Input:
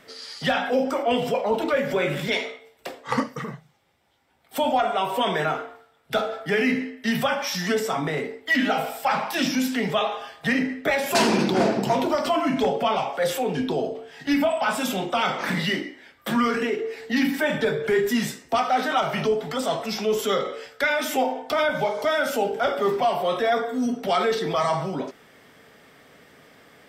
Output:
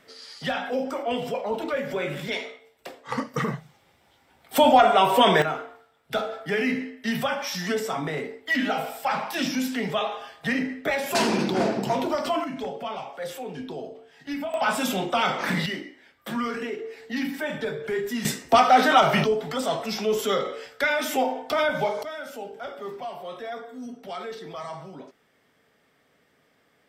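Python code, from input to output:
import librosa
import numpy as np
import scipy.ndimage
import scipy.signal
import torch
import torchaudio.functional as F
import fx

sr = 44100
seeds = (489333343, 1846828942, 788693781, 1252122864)

y = fx.gain(x, sr, db=fx.steps((0.0, -5.0), (3.34, 6.0), (5.42, -3.0), (12.44, -10.0), (14.54, 0.0), (15.66, -6.5), (18.25, 5.5), (19.24, -1.0), (22.03, -13.0)))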